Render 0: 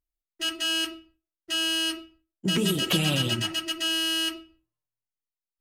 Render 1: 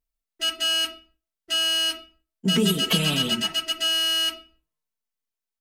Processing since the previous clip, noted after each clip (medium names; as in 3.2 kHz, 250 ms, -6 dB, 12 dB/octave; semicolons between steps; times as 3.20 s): comb 4.5 ms, depth 83%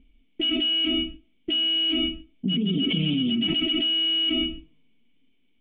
cascade formant filter i; level flattener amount 100%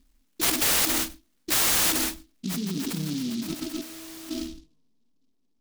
low-pass sweep 2.8 kHz -> 1.1 kHz, 1.88–4.05 s; delay time shaken by noise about 4.2 kHz, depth 0.15 ms; trim -5.5 dB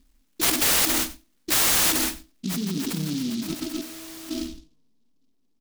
delay 88 ms -19 dB; trim +2 dB